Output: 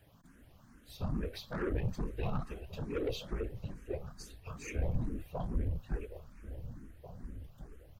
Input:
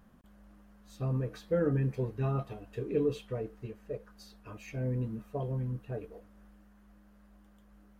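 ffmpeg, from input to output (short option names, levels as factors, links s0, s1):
-filter_complex "[0:a]afftfilt=real='hypot(re,im)*cos(2*PI*random(0))':imag='hypot(re,im)*sin(2*PI*random(1))':win_size=512:overlap=0.75,acrossover=split=180|1900[s0][s1][s2];[s2]acontrast=89[s3];[s0][s1][s3]amix=inputs=3:normalize=0,asoftclip=type=tanh:threshold=0.0188,asubboost=boost=4.5:cutoff=84,aeval=exprs='0.0531*(cos(1*acos(clip(val(0)/0.0531,-1,1)))-cos(1*PI/2))+0.00473*(cos(4*acos(clip(val(0)/0.0531,-1,1)))-cos(4*PI/2))':c=same,asplit=2[s4][s5];[s5]adelay=1691,volume=0.251,highshelf=f=4000:g=-38[s6];[s4][s6]amix=inputs=2:normalize=0,asplit=2[s7][s8];[s8]afreqshift=2.3[s9];[s7][s9]amix=inputs=2:normalize=1,volume=2.24"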